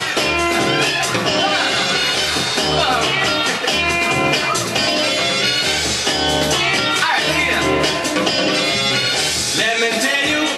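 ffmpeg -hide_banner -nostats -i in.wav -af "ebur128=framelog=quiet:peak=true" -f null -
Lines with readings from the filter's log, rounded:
Integrated loudness:
  I:         -15.4 LUFS
  Threshold: -25.4 LUFS
Loudness range:
  LRA:         0.3 LU
  Threshold: -35.4 LUFS
  LRA low:   -15.6 LUFS
  LRA high:  -15.2 LUFS
True peak:
  Peak:       -2.4 dBFS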